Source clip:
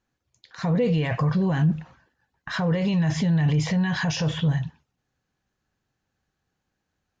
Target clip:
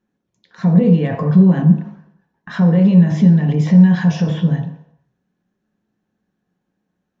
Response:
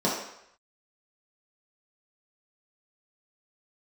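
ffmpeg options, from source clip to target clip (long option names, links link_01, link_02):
-filter_complex "[0:a]highshelf=frequency=4400:gain=-8.5,asplit=2[link_01][link_02];[1:a]atrim=start_sample=2205,lowshelf=frequency=390:gain=11[link_03];[link_02][link_03]afir=irnorm=-1:irlink=0,volume=-17dB[link_04];[link_01][link_04]amix=inputs=2:normalize=0,volume=-1dB"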